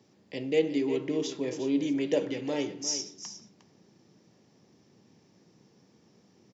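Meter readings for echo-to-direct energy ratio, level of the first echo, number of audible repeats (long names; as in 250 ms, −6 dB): −11.5 dB, −11.5 dB, 1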